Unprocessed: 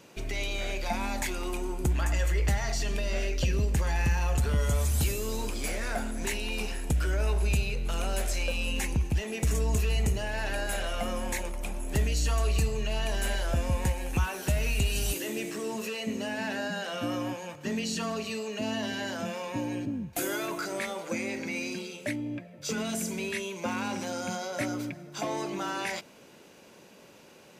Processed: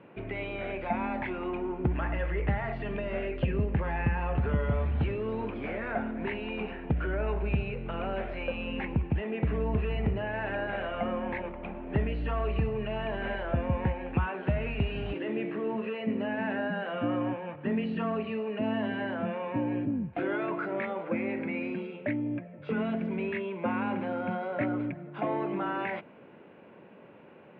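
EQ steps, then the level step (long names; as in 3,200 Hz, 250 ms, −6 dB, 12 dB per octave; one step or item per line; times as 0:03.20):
high-pass filter 94 Hz 12 dB per octave
low-pass filter 2,900 Hz 24 dB per octave
high-frequency loss of the air 480 metres
+3.5 dB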